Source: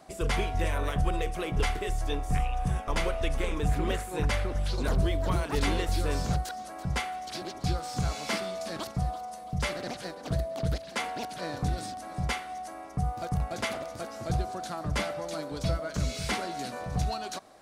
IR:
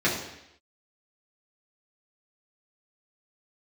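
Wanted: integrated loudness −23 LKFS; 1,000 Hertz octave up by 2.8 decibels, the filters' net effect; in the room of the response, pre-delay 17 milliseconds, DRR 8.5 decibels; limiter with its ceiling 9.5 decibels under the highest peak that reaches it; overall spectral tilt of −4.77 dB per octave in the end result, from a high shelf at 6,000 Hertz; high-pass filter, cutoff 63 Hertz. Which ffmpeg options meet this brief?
-filter_complex "[0:a]highpass=63,equalizer=frequency=1000:width_type=o:gain=4.5,highshelf=frequency=6000:gain=-6.5,alimiter=level_in=1.5dB:limit=-24dB:level=0:latency=1,volume=-1.5dB,asplit=2[link_01][link_02];[1:a]atrim=start_sample=2205,adelay=17[link_03];[link_02][link_03]afir=irnorm=-1:irlink=0,volume=-23dB[link_04];[link_01][link_04]amix=inputs=2:normalize=0,volume=11.5dB"

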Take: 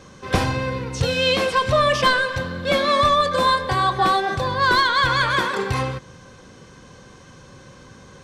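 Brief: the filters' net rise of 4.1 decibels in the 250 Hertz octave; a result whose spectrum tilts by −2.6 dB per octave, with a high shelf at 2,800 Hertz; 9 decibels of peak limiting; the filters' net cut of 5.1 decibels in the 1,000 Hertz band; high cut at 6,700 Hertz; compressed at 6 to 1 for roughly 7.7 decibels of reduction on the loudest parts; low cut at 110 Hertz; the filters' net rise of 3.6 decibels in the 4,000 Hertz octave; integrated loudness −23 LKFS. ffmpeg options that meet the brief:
ffmpeg -i in.wav -af "highpass=110,lowpass=6700,equalizer=frequency=250:width_type=o:gain=6,equalizer=frequency=1000:width_type=o:gain=-6,highshelf=frequency=2800:gain=-4,equalizer=frequency=4000:width_type=o:gain=8,acompressor=threshold=-22dB:ratio=6,volume=4dB,alimiter=limit=-14.5dB:level=0:latency=1" out.wav

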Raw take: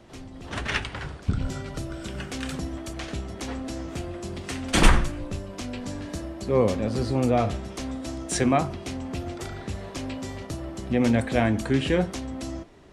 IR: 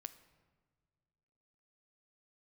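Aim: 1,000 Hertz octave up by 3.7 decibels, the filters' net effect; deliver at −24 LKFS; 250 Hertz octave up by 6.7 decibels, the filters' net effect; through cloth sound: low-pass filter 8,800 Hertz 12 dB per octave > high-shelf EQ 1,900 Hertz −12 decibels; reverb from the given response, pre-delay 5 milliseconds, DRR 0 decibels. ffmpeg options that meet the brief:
-filter_complex "[0:a]equalizer=frequency=250:width_type=o:gain=7.5,equalizer=frequency=1000:width_type=o:gain=8,asplit=2[link_01][link_02];[1:a]atrim=start_sample=2205,adelay=5[link_03];[link_02][link_03]afir=irnorm=-1:irlink=0,volume=5dB[link_04];[link_01][link_04]amix=inputs=2:normalize=0,lowpass=8800,highshelf=frequency=1900:gain=-12,volume=-3dB"

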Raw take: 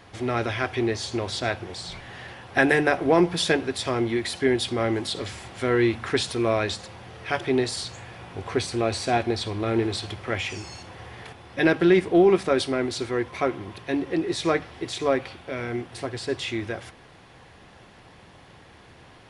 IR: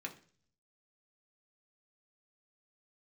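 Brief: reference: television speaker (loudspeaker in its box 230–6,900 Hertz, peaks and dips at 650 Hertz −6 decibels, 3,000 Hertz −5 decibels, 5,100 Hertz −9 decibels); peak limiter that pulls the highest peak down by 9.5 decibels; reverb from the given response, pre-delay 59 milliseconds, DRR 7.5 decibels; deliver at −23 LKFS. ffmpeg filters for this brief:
-filter_complex "[0:a]alimiter=limit=-14.5dB:level=0:latency=1,asplit=2[link_01][link_02];[1:a]atrim=start_sample=2205,adelay=59[link_03];[link_02][link_03]afir=irnorm=-1:irlink=0,volume=-7dB[link_04];[link_01][link_04]amix=inputs=2:normalize=0,highpass=frequency=230:width=0.5412,highpass=frequency=230:width=1.3066,equalizer=frequency=650:width_type=q:width=4:gain=-6,equalizer=frequency=3000:width_type=q:width=4:gain=-5,equalizer=frequency=5100:width_type=q:width=4:gain=-9,lowpass=frequency=6900:width=0.5412,lowpass=frequency=6900:width=1.3066,volume=5.5dB"

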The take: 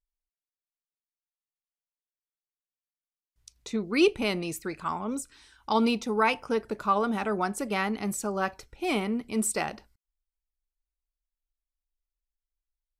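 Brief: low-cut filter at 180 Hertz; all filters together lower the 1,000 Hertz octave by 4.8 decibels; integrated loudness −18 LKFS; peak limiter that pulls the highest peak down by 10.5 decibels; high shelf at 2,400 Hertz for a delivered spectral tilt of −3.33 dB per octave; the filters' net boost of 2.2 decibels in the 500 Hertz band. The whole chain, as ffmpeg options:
ffmpeg -i in.wav -af "highpass=180,equalizer=frequency=500:width_type=o:gain=4.5,equalizer=frequency=1000:width_type=o:gain=-8.5,highshelf=frequency=2400:gain=4.5,volume=12dB,alimiter=limit=-6.5dB:level=0:latency=1" out.wav

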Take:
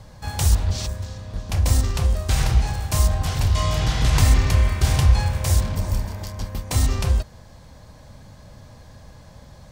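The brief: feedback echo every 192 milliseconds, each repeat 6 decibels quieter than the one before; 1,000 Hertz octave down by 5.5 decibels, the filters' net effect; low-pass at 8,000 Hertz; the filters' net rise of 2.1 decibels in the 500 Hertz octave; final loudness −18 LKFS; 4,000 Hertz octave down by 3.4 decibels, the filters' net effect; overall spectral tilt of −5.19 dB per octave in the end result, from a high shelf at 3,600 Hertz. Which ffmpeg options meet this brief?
ffmpeg -i in.wav -af "lowpass=8000,equalizer=frequency=500:width_type=o:gain=5.5,equalizer=frequency=1000:width_type=o:gain=-9,highshelf=frequency=3600:gain=4.5,equalizer=frequency=4000:width_type=o:gain=-7,aecho=1:1:192|384|576|768|960|1152:0.501|0.251|0.125|0.0626|0.0313|0.0157,volume=2.5dB" out.wav

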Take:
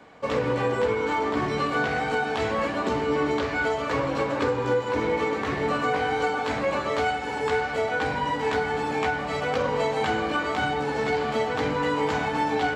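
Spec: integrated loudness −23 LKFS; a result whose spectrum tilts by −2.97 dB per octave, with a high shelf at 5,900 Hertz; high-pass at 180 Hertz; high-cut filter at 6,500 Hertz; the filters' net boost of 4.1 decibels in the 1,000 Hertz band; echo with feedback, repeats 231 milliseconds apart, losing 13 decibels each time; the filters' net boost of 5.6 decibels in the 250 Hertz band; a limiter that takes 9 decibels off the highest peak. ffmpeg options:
ffmpeg -i in.wav -af "highpass=180,lowpass=6500,equalizer=frequency=250:width_type=o:gain=7.5,equalizer=frequency=1000:width_type=o:gain=4.5,highshelf=frequency=5900:gain=8.5,alimiter=limit=-18dB:level=0:latency=1,aecho=1:1:231|462|693:0.224|0.0493|0.0108,volume=3dB" out.wav

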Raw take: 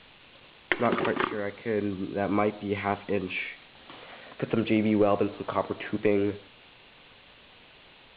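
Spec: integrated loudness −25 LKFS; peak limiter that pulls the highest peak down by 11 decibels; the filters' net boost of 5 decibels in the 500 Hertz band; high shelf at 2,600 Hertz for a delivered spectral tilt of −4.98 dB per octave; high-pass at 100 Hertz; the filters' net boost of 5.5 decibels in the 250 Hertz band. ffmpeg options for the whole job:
ffmpeg -i in.wav -af "highpass=100,equalizer=frequency=250:width_type=o:gain=6,equalizer=frequency=500:width_type=o:gain=4,highshelf=frequency=2600:gain=5,volume=0.5dB,alimiter=limit=-12dB:level=0:latency=1" out.wav

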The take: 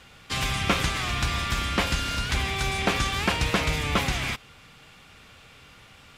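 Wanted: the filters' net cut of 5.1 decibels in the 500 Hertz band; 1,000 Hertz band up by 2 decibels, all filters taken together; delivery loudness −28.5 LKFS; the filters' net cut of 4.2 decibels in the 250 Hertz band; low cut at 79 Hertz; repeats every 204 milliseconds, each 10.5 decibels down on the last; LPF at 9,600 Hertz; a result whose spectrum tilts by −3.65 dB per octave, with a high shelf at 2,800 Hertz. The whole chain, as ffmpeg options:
ffmpeg -i in.wav -af "highpass=79,lowpass=9600,equalizer=frequency=250:width_type=o:gain=-4.5,equalizer=frequency=500:width_type=o:gain=-7,equalizer=frequency=1000:width_type=o:gain=5.5,highshelf=frequency=2800:gain=-5.5,aecho=1:1:204|408|612:0.299|0.0896|0.0269,volume=-1.5dB" out.wav

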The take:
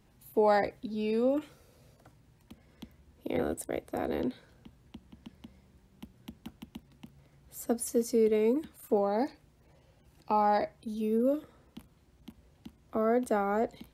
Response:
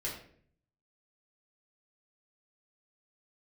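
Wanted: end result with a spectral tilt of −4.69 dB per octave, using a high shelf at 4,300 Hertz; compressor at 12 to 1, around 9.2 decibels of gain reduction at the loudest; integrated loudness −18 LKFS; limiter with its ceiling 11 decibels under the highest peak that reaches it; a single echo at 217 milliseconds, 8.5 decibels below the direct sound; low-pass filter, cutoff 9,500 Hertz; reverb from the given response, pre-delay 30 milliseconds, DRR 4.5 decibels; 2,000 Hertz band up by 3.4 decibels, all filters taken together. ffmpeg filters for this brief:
-filter_complex "[0:a]lowpass=9500,equalizer=frequency=2000:width_type=o:gain=3.5,highshelf=frequency=4300:gain=3.5,acompressor=threshold=-30dB:ratio=12,alimiter=level_in=4dB:limit=-24dB:level=0:latency=1,volume=-4dB,aecho=1:1:217:0.376,asplit=2[link_01][link_02];[1:a]atrim=start_sample=2205,adelay=30[link_03];[link_02][link_03]afir=irnorm=-1:irlink=0,volume=-7dB[link_04];[link_01][link_04]amix=inputs=2:normalize=0,volume=19dB"

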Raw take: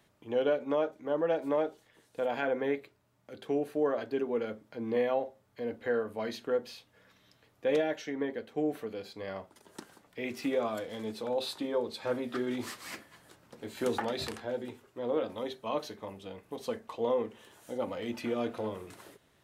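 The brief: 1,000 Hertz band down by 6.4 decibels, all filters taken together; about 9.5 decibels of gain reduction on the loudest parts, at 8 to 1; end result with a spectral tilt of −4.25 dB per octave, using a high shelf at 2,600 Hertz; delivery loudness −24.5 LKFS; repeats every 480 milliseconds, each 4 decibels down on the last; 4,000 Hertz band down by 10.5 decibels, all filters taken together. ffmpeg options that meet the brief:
ffmpeg -i in.wav -af "equalizer=frequency=1000:width_type=o:gain=-7.5,highshelf=frequency=2600:gain=-8.5,equalizer=frequency=4000:width_type=o:gain=-5.5,acompressor=threshold=-36dB:ratio=8,aecho=1:1:480|960|1440|1920|2400|2880|3360|3840|4320:0.631|0.398|0.25|0.158|0.0994|0.0626|0.0394|0.0249|0.0157,volume=16dB" out.wav

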